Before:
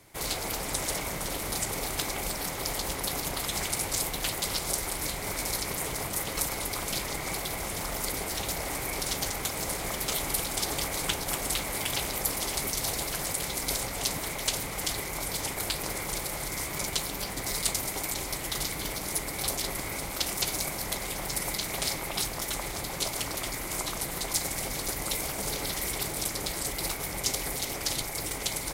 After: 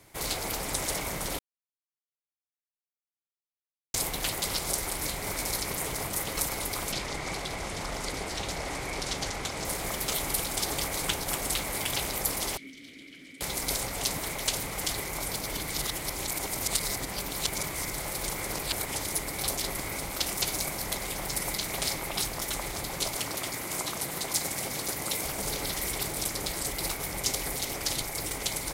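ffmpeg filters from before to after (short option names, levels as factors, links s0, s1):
-filter_complex "[0:a]asettb=1/sr,asplit=3[s0][s1][s2];[s0]atrim=end=6.924[s3];[s1]atrim=start=6.92:end=9.65,asetpts=PTS-STARTPTS,afade=t=in:d=0.004:c=qsin,afade=t=out:st=2.726:d=0.004:c=qsin,lowpass=6900[s4];[s2]atrim=start=9.646[s5];[s3][s4]acrossfade=d=0.004:c1=hsin:c2=qsin[s6];[s6][s5]acrossfade=d=0.004:c1=qsin:c2=hsin,asettb=1/sr,asplit=3[s7][s8][s9];[s7]atrim=end=12.574[s10];[s8]atrim=start=12.57:end=13.41,asetpts=PTS-STARTPTS,afade=t=in:d=0.004:c=qsin,afade=t=out:st=0.836:d=0.004:c=qsin,asplit=3[s11][s12][s13];[s11]bandpass=f=270:t=q:w=8,volume=1[s14];[s12]bandpass=f=2290:t=q:w=8,volume=0.501[s15];[s13]bandpass=f=3010:t=q:w=8,volume=0.355[s16];[s14][s15][s16]amix=inputs=3:normalize=0[s17];[s9]atrim=start=13.406[s18];[s10][s17]acrossfade=d=0.004:c1=hsin:c2=qsin[s19];[s19][s18]acrossfade=d=0.004:c1=qsin:c2=hsin,asettb=1/sr,asplit=3[s20][s21][s22];[s20]atrim=end=23.174[s23];[s21]atrim=start=23.17:end=25.24,asetpts=PTS-STARTPTS,afade=t=in:d=0.004:c=qsin,afade=t=out:st=2.066:d=0.004:c=qsin,highpass=92[s24];[s22]atrim=start=25.236[s25];[s23][s24]acrossfade=d=0.004:c1=hsin:c2=qsin[s26];[s26][s25]acrossfade=d=0.004:c1=qsin:c2=hsin,asplit=5[s27][s28][s29][s30][s31];[s27]atrim=end=1.39,asetpts=PTS-STARTPTS,afade=t=out:st=1.386:d=0.004:c=hsin[s32];[s28]atrim=start=1.39:end=3.94,asetpts=PTS-STARTPTS,volume=0[s33];[s29]atrim=start=3.94:end=15.362,asetpts=PTS-STARTPTS,afade=t=in:d=0.004:c=hsin[s34];[s30]atrim=start=15.358:end=19.062,asetpts=PTS-STARTPTS,areverse[s35];[s31]atrim=start=19.058[s36];[s32][s33][s34]concat=n=3:v=0:a=1[s37];[s37][s35]acrossfade=d=0.004:c1=hsin:c2=hsin[s38];[s38][s36]acrossfade=d=0.004:c1=hsin:c2=hsin"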